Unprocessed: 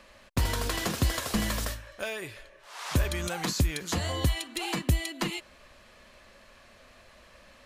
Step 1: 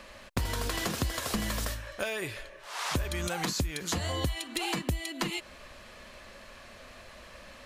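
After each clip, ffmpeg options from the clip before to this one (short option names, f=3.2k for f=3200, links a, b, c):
-af "acompressor=threshold=-35dB:ratio=4,volume=5.5dB"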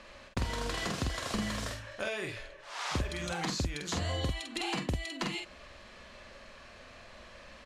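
-filter_complex "[0:a]lowpass=7.1k,asplit=2[a][b];[b]adelay=47,volume=-4dB[c];[a][c]amix=inputs=2:normalize=0,volume=-3.5dB"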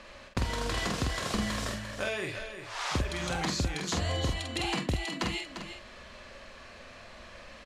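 -af "aecho=1:1:348:0.335,volume=2.5dB"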